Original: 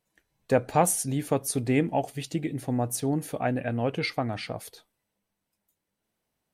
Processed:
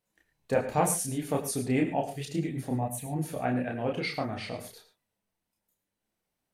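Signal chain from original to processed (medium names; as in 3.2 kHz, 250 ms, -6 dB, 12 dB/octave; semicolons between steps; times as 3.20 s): 2.75–3.16 s: static phaser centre 1.4 kHz, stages 6; chorus voices 4, 1.3 Hz, delay 30 ms, depth 3 ms; gated-style reverb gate 130 ms rising, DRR 9.5 dB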